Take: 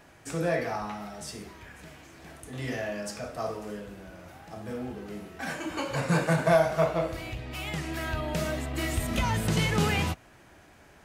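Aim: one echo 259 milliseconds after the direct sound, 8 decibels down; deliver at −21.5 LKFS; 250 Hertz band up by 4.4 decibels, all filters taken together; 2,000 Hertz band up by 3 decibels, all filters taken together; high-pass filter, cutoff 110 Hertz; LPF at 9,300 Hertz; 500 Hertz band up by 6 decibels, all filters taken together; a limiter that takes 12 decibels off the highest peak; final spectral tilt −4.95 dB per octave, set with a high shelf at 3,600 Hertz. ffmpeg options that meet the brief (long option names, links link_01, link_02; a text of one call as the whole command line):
ffmpeg -i in.wav -af "highpass=110,lowpass=9300,equalizer=frequency=250:width_type=o:gain=5,equalizer=frequency=500:width_type=o:gain=7,equalizer=frequency=2000:width_type=o:gain=4.5,highshelf=frequency=3600:gain=-4.5,alimiter=limit=-19dB:level=0:latency=1,aecho=1:1:259:0.398,volume=8dB" out.wav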